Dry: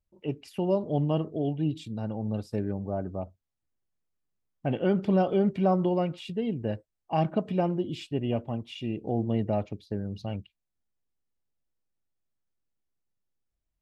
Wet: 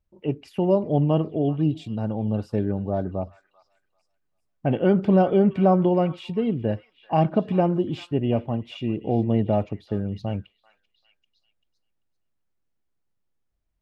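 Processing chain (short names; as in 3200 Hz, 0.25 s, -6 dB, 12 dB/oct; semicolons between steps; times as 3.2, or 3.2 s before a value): high shelf 3900 Hz -11 dB; delay with a stepping band-pass 0.39 s, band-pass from 1600 Hz, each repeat 0.7 oct, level -12 dB; gain +6 dB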